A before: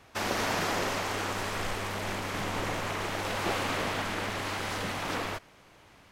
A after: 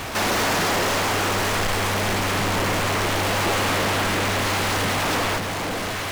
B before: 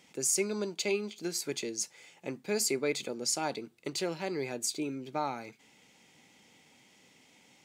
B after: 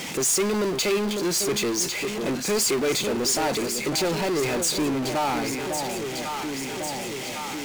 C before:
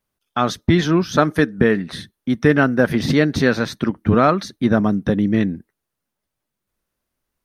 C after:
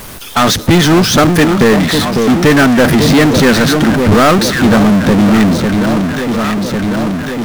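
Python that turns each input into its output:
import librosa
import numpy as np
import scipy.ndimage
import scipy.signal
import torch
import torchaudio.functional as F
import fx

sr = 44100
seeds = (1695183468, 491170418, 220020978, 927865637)

y = fx.echo_alternate(x, sr, ms=550, hz=850.0, feedback_pct=65, wet_db=-11.5)
y = fx.power_curve(y, sr, exponent=0.35)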